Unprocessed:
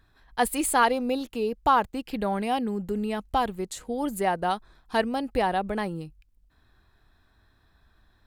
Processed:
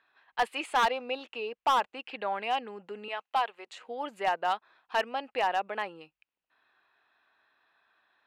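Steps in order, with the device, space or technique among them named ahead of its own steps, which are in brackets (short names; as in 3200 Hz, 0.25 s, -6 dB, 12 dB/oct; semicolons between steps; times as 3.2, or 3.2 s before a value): 3.08–3.67 HPF 510 Hz 12 dB/oct; megaphone (BPF 680–2800 Hz; bell 2700 Hz +8 dB 0.36 oct; hard clip -19.5 dBFS, distortion -11 dB)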